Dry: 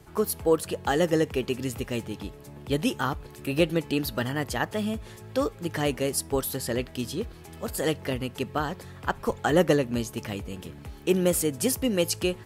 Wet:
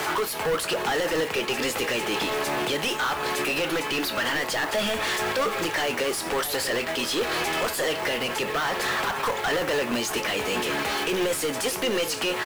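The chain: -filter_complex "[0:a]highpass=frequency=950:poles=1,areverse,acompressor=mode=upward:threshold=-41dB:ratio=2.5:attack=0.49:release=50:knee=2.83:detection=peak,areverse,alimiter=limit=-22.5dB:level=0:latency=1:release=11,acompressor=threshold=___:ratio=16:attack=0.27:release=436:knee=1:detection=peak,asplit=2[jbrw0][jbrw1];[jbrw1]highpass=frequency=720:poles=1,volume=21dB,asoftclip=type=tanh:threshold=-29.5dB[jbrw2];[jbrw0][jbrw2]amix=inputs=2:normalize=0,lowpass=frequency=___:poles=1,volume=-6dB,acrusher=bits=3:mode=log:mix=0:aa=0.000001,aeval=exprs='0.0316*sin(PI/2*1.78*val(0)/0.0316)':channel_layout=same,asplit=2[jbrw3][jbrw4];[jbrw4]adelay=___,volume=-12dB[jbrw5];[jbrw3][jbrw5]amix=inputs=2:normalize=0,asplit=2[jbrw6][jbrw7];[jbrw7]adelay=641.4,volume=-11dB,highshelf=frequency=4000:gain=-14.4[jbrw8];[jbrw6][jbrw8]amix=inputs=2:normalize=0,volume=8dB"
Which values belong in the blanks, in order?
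-35dB, 2300, 25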